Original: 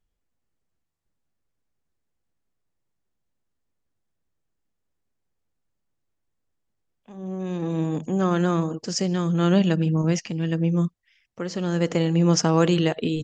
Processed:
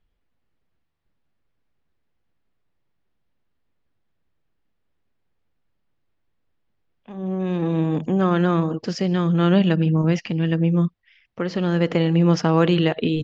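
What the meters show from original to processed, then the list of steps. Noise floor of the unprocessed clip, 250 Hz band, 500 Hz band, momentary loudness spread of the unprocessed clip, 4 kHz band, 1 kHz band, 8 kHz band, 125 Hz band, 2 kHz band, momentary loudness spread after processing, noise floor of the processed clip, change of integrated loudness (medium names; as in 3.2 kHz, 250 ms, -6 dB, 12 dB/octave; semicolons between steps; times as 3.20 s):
-77 dBFS, +3.0 dB, +2.5 dB, 10 LU, +0.5 dB, +2.5 dB, no reading, +3.0 dB, +3.5 dB, 9 LU, -71 dBFS, +2.5 dB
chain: treble shelf 2.5 kHz +11 dB; in parallel at +0.5 dB: compression, threshold -26 dBFS, peak gain reduction 15 dB; on the sum: distance through air 350 m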